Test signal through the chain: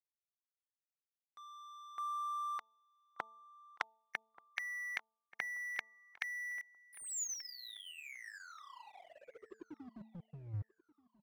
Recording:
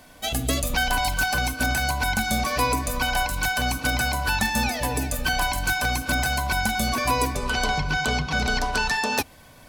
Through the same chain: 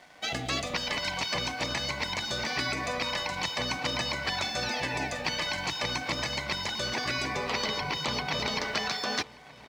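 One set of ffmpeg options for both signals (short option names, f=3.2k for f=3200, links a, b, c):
-filter_complex "[0:a]highpass=170,equalizer=f=260:t=q:w=4:g=-7,equalizer=f=780:t=q:w=4:g=6,equalizer=f=2k:t=q:w=4:g=9,lowpass=f=5.6k:w=0.5412,lowpass=f=5.6k:w=1.3066,afftfilt=real='re*lt(hypot(re,im),0.2)':imag='im*lt(hypot(re,im),0.2)':win_size=1024:overlap=0.75,aeval=exprs='sgn(val(0))*max(abs(val(0))-0.00211,0)':c=same,bandreject=f=221.5:t=h:w=4,bandreject=f=443:t=h:w=4,bandreject=f=664.5:t=h:w=4,bandreject=f=886:t=h:w=4,asplit=2[a][b];[b]adelay=1182,lowpass=f=2.7k:p=1,volume=-20dB,asplit=2[c][d];[d]adelay=1182,lowpass=f=2.7k:p=1,volume=0.35,asplit=2[e][f];[f]adelay=1182,lowpass=f=2.7k:p=1,volume=0.35[g];[c][e][g]amix=inputs=3:normalize=0[h];[a][h]amix=inputs=2:normalize=0"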